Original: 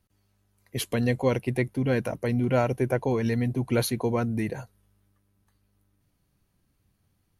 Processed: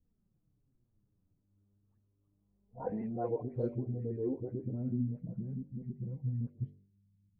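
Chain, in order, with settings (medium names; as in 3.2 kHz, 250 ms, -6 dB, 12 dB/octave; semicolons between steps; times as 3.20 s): reverse the whole clip; compression 6:1, threshold -32 dBFS, peak gain reduction 13.5 dB; de-hum 48.47 Hz, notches 16; flange 0.35 Hz, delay 3.9 ms, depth 7.5 ms, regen +7%; level-controlled noise filter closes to 340 Hz, open at -37 dBFS; phase dispersion highs, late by 124 ms, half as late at 1.9 kHz; low-pass sweep 1.5 kHz -> 170 Hz, 1.92–5.41 s; AAC 32 kbps 32 kHz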